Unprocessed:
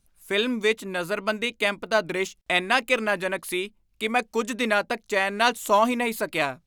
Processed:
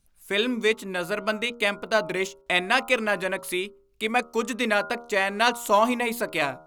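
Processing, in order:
hum removal 79.08 Hz, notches 18

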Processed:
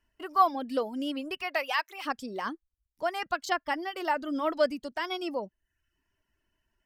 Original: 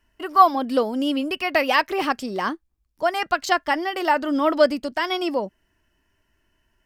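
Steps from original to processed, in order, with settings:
reverb reduction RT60 0.59 s
0:01.42–0:02.05: high-pass filter 400 Hz → 1,400 Hz 12 dB per octave
level −8.5 dB

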